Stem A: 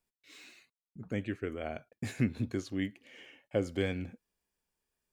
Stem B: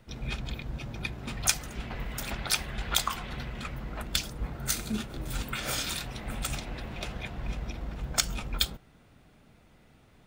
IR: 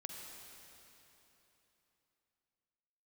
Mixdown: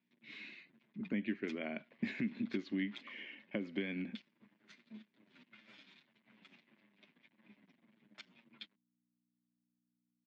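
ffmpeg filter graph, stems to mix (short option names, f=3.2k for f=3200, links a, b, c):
-filter_complex "[0:a]acompressor=threshold=-35dB:ratio=12,volume=3dB[a];[1:a]aeval=exprs='sgn(val(0))*max(abs(val(0))-0.0168,0)':c=same,asplit=2[b][c];[c]adelay=7.9,afreqshift=-1.7[d];[b][d]amix=inputs=2:normalize=1,volume=-17dB[e];[a][e]amix=inputs=2:normalize=0,aeval=exprs='val(0)+0.000158*(sin(2*PI*60*n/s)+sin(2*PI*2*60*n/s)/2+sin(2*PI*3*60*n/s)/3+sin(2*PI*4*60*n/s)/4+sin(2*PI*5*60*n/s)/5)':c=same,highpass=f=200:w=0.5412,highpass=f=200:w=1.3066,equalizer=f=210:t=q:w=4:g=8,equalizer=f=480:t=q:w=4:g=-9,equalizer=f=760:t=q:w=4:g=-10,equalizer=f=1.3k:t=q:w=4:g=-8,equalizer=f=2.1k:t=q:w=4:g=5,lowpass=f=3.7k:w=0.5412,lowpass=f=3.7k:w=1.3066"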